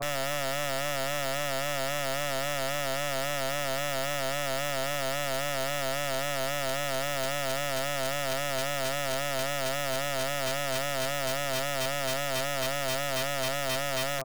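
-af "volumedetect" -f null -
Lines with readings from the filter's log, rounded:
mean_volume: -30.2 dB
max_volume: -24.3 dB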